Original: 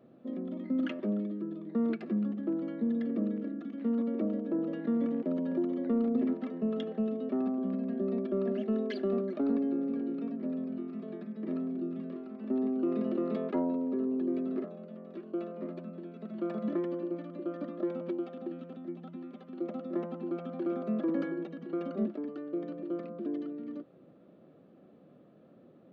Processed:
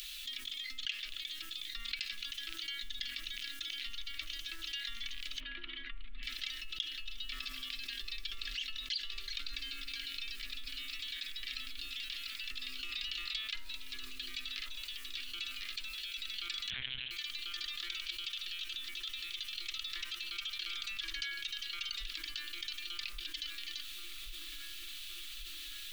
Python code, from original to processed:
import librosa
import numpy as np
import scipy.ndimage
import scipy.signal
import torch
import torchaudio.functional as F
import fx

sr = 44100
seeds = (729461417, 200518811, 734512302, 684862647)

y = scipy.signal.sosfilt(scipy.signal.cheby2(4, 70, [110.0, 860.0], 'bandstop', fs=sr, output='sos'), x)
y = fx.rider(y, sr, range_db=4, speed_s=0.5)
y = fx.gaussian_blur(y, sr, sigma=3.7, at=(5.4, 6.23))
y = fx.echo_wet_lowpass(y, sr, ms=1126, feedback_pct=67, hz=880.0, wet_db=-7)
y = fx.lpc_monotone(y, sr, seeds[0], pitch_hz=130.0, order=10, at=(16.7, 17.11))
y = fx.env_flatten(y, sr, amount_pct=70)
y = F.gain(torch.from_numpy(y), 16.5).numpy()